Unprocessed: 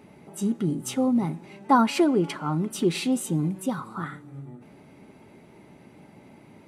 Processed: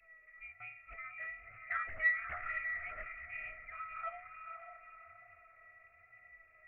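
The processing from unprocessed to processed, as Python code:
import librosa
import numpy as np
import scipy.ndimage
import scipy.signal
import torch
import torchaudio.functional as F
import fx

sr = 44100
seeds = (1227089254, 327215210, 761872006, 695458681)

p1 = scipy.signal.sosfilt(scipy.signal.butter(2, 96.0, 'highpass', fs=sr, output='sos'), x)
p2 = fx.peak_eq(p1, sr, hz=260.0, db=-11.0, octaves=0.37)
p3 = fx.rider(p2, sr, range_db=3, speed_s=2.0)
p4 = p2 + (p3 * librosa.db_to_amplitude(2.0))
p5 = fx.comb_fb(p4, sr, f0_hz=640.0, decay_s=0.36, harmonics='all', damping=0.0, mix_pct=100)
p6 = fx.vibrato(p5, sr, rate_hz=1.1, depth_cents=47.0)
p7 = fx.echo_diffused(p6, sr, ms=537, feedback_pct=40, wet_db=-6.0)
p8 = fx.freq_invert(p7, sr, carrier_hz=2600)
p9 = fx.doppler_dist(p8, sr, depth_ms=0.34)
y = p9 * librosa.db_to_amplitude(3.5)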